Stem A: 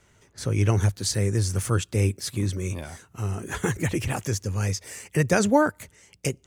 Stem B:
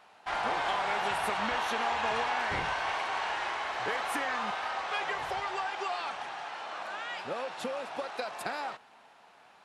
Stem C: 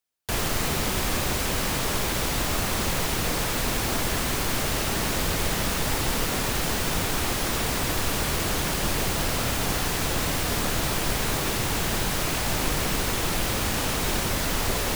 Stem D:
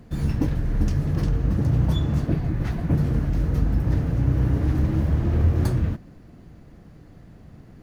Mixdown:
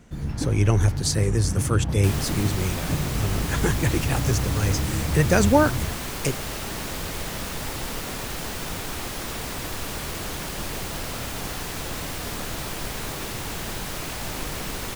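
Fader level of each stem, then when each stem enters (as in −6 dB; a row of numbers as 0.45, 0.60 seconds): +1.5, −17.5, −5.5, −5.5 decibels; 0.00, 0.00, 1.75, 0.00 seconds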